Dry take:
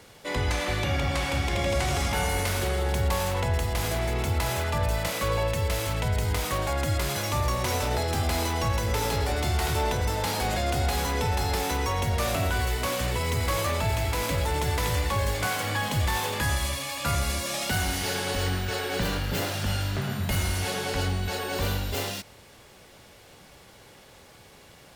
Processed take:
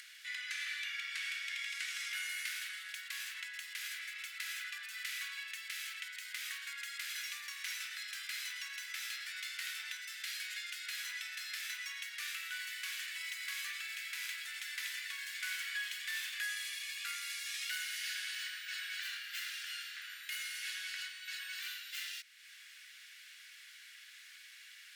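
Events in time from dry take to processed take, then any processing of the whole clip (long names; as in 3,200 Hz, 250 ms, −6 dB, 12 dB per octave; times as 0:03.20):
0:10.01–0:10.84: low shelf with overshoot 550 Hz +12 dB, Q 3
whole clip: Butterworth high-pass 1,600 Hz 48 dB per octave; high-shelf EQ 3,700 Hz −9 dB; upward compression, threshold −42 dBFS; level −3.5 dB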